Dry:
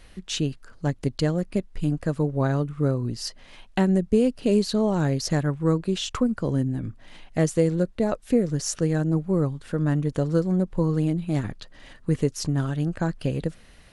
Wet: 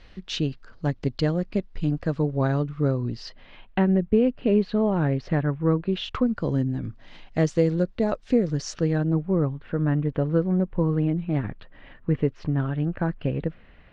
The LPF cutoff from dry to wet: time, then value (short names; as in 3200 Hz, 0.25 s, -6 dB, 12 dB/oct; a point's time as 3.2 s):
LPF 24 dB/oct
2.96 s 5100 Hz
3.78 s 2900 Hz
5.76 s 2900 Hz
6.53 s 5500 Hz
8.65 s 5500 Hz
9.36 s 2800 Hz